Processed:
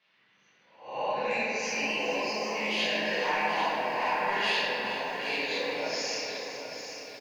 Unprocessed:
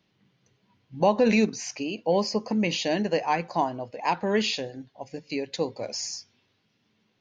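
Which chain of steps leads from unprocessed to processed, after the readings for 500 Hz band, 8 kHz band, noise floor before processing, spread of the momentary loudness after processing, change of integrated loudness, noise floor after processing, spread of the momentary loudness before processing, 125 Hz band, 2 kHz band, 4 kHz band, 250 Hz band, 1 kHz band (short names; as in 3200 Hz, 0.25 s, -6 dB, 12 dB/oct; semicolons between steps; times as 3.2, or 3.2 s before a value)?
-5.5 dB, n/a, -71 dBFS, 9 LU, -3.0 dB, -66 dBFS, 14 LU, -14.0 dB, +5.5 dB, +1.5 dB, -12.0 dB, -1.0 dB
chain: spectral swells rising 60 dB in 0.47 s; compressor, threshold -26 dBFS, peak gain reduction 11 dB; limiter -22 dBFS, peak gain reduction 6 dB; band-pass 1900 Hz, Q 1.3; soft clip -28 dBFS, distortion -25 dB; feedback echo 0.426 s, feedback 57%, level -12 dB; shoebox room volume 120 m³, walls hard, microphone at 1.5 m; lo-fi delay 0.789 s, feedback 35%, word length 9-bit, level -9 dB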